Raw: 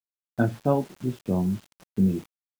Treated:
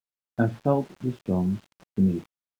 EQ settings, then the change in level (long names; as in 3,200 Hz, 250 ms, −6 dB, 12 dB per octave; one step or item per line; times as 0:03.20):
low-pass filter 3,700 Hz 6 dB per octave
0.0 dB